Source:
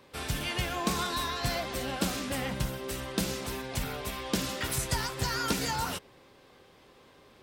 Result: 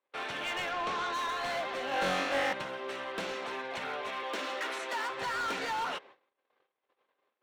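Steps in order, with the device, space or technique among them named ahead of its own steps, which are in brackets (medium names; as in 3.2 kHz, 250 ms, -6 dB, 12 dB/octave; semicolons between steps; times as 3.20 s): walkie-talkie (band-pass 520–2600 Hz; hard clipper -34.5 dBFS, distortion -11 dB; gate -57 dBFS, range -31 dB); 0.71–1.14 s: low-pass 6.3 kHz 12 dB/octave; band-stop 4.9 kHz, Q 13; 1.89–2.53 s: flutter echo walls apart 3.7 m, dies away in 0.81 s; 4.23–5.10 s: steep high-pass 230 Hz 36 dB/octave; trim +4 dB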